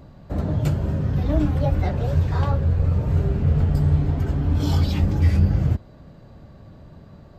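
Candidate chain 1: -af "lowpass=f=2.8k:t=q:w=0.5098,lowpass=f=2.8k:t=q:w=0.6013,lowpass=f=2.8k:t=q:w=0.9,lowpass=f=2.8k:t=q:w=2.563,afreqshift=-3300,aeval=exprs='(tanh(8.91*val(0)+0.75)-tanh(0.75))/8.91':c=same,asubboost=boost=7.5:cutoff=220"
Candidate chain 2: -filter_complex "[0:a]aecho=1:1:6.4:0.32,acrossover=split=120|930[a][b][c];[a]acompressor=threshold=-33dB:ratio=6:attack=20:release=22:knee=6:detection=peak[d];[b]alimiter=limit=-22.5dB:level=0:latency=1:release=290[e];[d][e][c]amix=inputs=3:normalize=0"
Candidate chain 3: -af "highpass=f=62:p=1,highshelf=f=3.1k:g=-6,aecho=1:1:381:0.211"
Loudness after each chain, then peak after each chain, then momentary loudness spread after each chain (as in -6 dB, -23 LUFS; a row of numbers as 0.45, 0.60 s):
-21.5, -28.0, -22.5 LUFS; -5.5, -16.0, -8.5 dBFS; 4, 19, 7 LU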